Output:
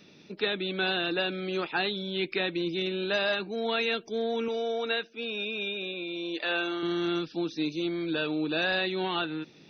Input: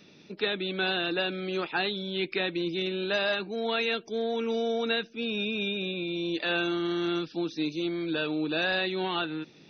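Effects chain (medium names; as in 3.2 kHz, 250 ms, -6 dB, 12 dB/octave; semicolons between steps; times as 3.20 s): 4.48–6.83 s: tone controls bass -14 dB, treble -4 dB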